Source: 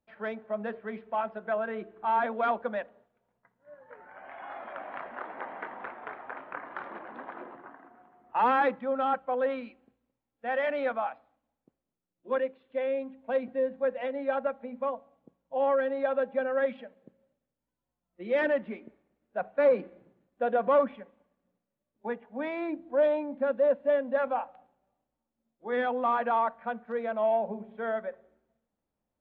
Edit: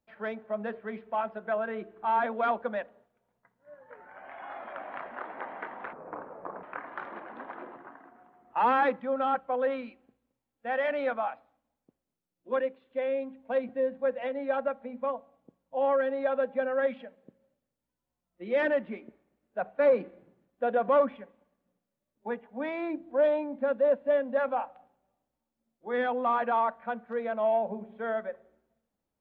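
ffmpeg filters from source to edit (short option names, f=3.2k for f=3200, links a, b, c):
-filter_complex "[0:a]asplit=3[a][b][c];[a]atrim=end=5.934[d];[b]atrim=start=5.93:end=6.42,asetpts=PTS-STARTPTS,asetrate=30870,aresample=44100,atrim=end_sample=30870,asetpts=PTS-STARTPTS[e];[c]atrim=start=6.416[f];[d][e]acrossfade=d=0.004:c1=hsin:c2=hsin[g];[g][f]acrossfade=d=0.004:c1=hsin:c2=hsin"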